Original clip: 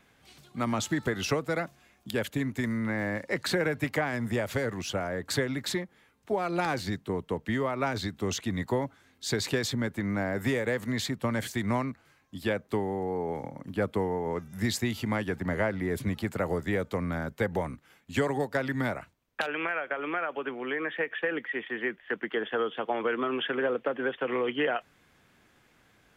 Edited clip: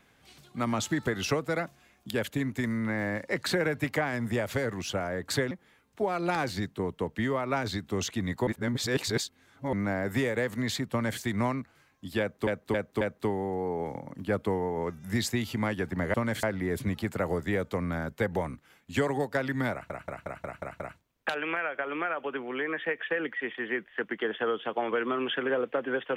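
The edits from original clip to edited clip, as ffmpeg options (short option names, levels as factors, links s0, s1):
-filter_complex "[0:a]asplit=15[s0][s1][s2][s3][s4][s5][s6][s7][s8][s9][s10][s11][s12][s13][s14];[s0]atrim=end=5.512[s15];[s1]atrim=start=5.808:end=8.772[s16];[s2]atrim=start=8.768:end=10.032,asetpts=PTS-STARTPTS,areverse[s17];[s3]atrim=start=10.028:end=12.772[s18];[s4]atrim=start=12.498:end=12.772[s19];[s5]atrim=start=12.498:end=12.772[s20];[s6]atrim=start=12.498:end=15.632[s21];[s7]atrim=start=11.208:end=11.502[s22];[s8]atrim=start=15.628:end=19.102[s23];[s9]atrim=start=18.918:end=19.102[s24];[s10]atrim=start=18.918:end=19.102[s25];[s11]atrim=start=18.918:end=19.102[s26];[s12]atrim=start=18.918:end=19.102[s27];[s13]atrim=start=18.918:end=19.102[s28];[s14]atrim=start=18.918[s29];[s15][s16]acrossfade=d=0.004:c1=hsin:c2=hsin[s30];[s30][s17]acrossfade=d=0.004:c1=hsin:c2=hsin[s31];[s31][s18]acrossfade=d=0.004:c1=hsin:c2=hsin[s32];[s32][s19]acrossfade=d=0.004:c1=hsin:c2=hsin[s33];[s33][s20]acrossfade=d=0.004:c1=hsin:c2=hsin[s34];[s34][s21]acrossfade=d=0.004:c1=hsin:c2=hsin[s35];[s35][s22]acrossfade=d=0.004:c1=hsin:c2=hsin[s36];[s36][s23]acrossfade=d=0.004:c1=hsin:c2=hsin[s37];[s37][s24]acrossfade=d=0.004:c1=hsin:c2=hsin[s38];[s38][s25]acrossfade=d=0.004:c1=hsin:c2=hsin[s39];[s39][s26]acrossfade=d=0.004:c1=hsin:c2=hsin[s40];[s40][s27]acrossfade=d=0.004:c1=hsin:c2=hsin[s41];[s41][s28]acrossfade=d=0.004:c1=hsin:c2=hsin[s42];[s42][s29]acrossfade=d=0.004:c1=hsin:c2=hsin"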